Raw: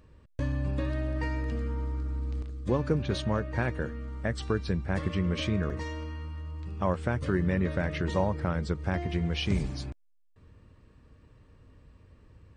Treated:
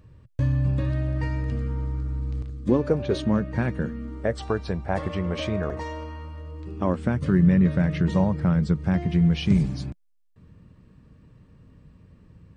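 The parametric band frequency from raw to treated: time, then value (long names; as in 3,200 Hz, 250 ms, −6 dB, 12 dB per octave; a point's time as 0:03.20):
parametric band +12.5 dB 1 octave
0:02.52 120 Hz
0:02.96 750 Hz
0:03.39 190 Hz
0:03.98 190 Hz
0:04.42 740 Hz
0:06.23 740 Hz
0:07.21 170 Hz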